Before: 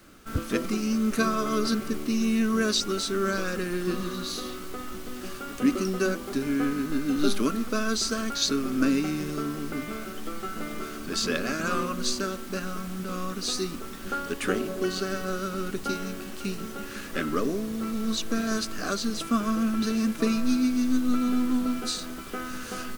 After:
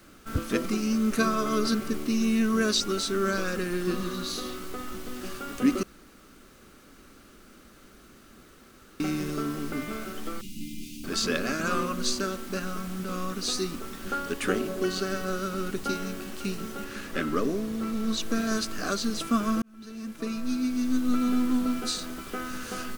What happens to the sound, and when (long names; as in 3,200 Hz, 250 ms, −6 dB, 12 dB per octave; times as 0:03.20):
0:05.83–0:09.00: fill with room tone
0:10.41–0:11.04: Chebyshev band-stop filter 290–2,500 Hz, order 4
0:16.84–0:18.20: high-shelf EQ 5,600 Hz −4 dB
0:19.62–0:21.23: fade in